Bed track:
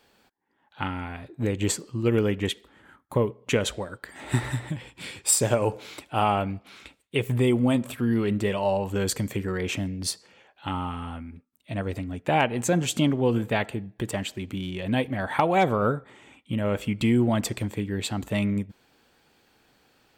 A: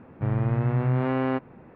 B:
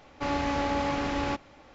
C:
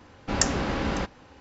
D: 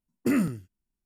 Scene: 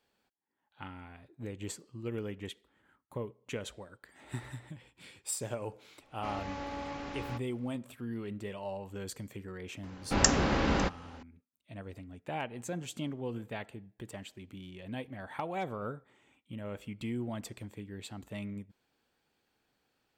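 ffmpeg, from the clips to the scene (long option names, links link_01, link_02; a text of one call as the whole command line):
ffmpeg -i bed.wav -i cue0.wav -i cue1.wav -i cue2.wav -filter_complex "[0:a]volume=-15dB[link_01];[2:a]atrim=end=1.74,asetpts=PTS-STARTPTS,volume=-11.5dB,afade=type=in:duration=0.004:curve=hsin,afade=type=out:start_time=1.736:duration=0.004:curve=hsin,adelay=6020[link_02];[3:a]atrim=end=1.4,asetpts=PTS-STARTPTS,volume=-0.5dB,afade=type=in:duration=0.004:curve=hsin,afade=type=out:start_time=1.396:duration=0.004:curve=hsin,adelay=9830[link_03];[link_01][link_02][link_03]amix=inputs=3:normalize=0" out.wav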